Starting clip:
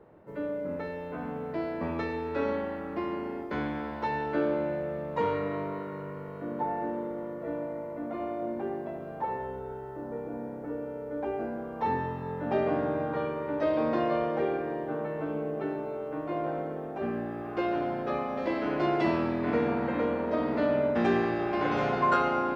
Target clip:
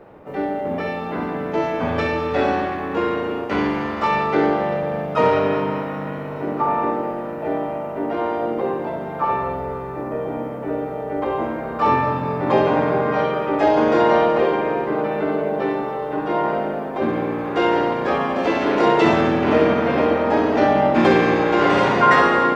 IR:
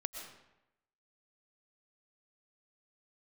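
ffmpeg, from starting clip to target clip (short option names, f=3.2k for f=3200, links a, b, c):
-filter_complex "[0:a]asplit=3[a][b][c];[b]asetrate=58866,aresample=44100,atempo=0.749154,volume=-3dB[d];[c]asetrate=66075,aresample=44100,atempo=0.66742,volume=-18dB[e];[a][d][e]amix=inputs=3:normalize=0,bandreject=f=50:t=h:w=6,bandreject=f=100:t=h:w=6,bandreject=f=150:t=h:w=6,asplit=2[f][g];[1:a]atrim=start_sample=2205,adelay=62[h];[g][h]afir=irnorm=-1:irlink=0,volume=-6.5dB[i];[f][i]amix=inputs=2:normalize=0,volume=9dB"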